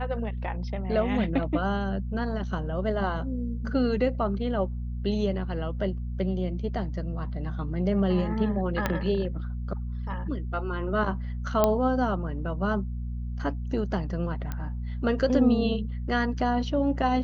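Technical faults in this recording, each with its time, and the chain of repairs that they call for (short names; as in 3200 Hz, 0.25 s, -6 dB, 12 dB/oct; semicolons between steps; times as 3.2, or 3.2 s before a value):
hum 60 Hz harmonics 4 -32 dBFS
8.86 pop -11 dBFS
11.64 pop -8 dBFS
14.52 pop -19 dBFS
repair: de-click; de-hum 60 Hz, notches 4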